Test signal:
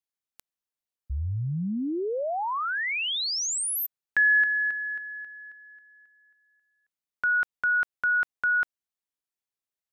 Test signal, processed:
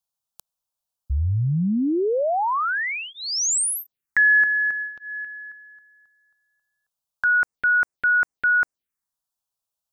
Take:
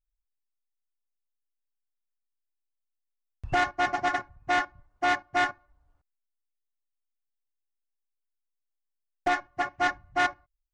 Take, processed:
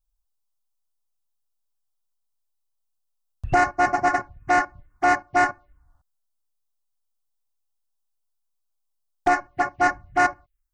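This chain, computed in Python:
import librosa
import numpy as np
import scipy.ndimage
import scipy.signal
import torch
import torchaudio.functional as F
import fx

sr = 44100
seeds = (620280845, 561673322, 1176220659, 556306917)

y = fx.env_phaser(x, sr, low_hz=340.0, high_hz=3400.0, full_db=-27.0)
y = y * 10.0 ** (7.5 / 20.0)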